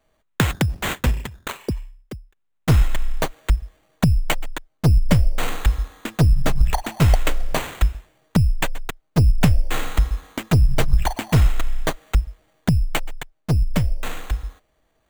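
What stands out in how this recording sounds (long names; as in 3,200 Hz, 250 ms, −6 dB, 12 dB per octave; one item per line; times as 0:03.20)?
aliases and images of a low sample rate 5,200 Hz, jitter 0%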